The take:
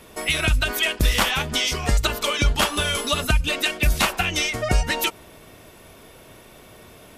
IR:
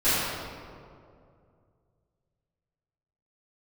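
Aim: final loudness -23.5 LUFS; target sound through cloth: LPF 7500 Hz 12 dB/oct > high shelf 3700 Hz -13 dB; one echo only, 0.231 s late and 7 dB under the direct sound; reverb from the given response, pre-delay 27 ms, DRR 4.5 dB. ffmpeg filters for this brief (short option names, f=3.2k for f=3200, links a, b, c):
-filter_complex "[0:a]aecho=1:1:231:0.447,asplit=2[a][b];[1:a]atrim=start_sample=2205,adelay=27[c];[b][c]afir=irnorm=-1:irlink=0,volume=-21dB[d];[a][d]amix=inputs=2:normalize=0,lowpass=7.5k,highshelf=f=3.7k:g=-13,volume=-1.5dB"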